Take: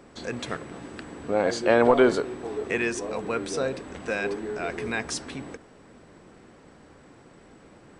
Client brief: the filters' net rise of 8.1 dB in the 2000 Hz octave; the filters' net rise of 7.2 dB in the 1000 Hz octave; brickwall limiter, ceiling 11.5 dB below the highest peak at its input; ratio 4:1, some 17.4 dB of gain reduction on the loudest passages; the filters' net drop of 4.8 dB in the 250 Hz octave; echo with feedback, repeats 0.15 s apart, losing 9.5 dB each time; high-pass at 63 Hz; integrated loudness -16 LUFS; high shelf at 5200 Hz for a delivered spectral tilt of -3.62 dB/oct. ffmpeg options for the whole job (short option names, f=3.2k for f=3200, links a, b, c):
-af "highpass=63,equalizer=f=250:t=o:g=-7.5,equalizer=f=1k:t=o:g=8,equalizer=f=2k:t=o:g=8.5,highshelf=f=5.2k:g=-5.5,acompressor=threshold=-32dB:ratio=4,alimiter=level_in=2.5dB:limit=-24dB:level=0:latency=1,volume=-2.5dB,aecho=1:1:150|300|450|600:0.335|0.111|0.0365|0.012,volume=23dB"